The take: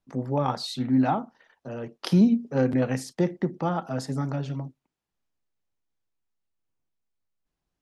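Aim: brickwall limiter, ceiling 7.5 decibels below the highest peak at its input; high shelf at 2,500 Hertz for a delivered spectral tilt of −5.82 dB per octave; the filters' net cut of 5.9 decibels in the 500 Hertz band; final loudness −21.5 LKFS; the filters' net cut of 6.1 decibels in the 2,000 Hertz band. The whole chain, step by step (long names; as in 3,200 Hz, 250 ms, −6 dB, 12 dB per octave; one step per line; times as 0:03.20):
parametric band 500 Hz −7 dB
parametric band 2,000 Hz −6.5 dB
high-shelf EQ 2,500 Hz −3.5 dB
level +9 dB
brickwall limiter −10 dBFS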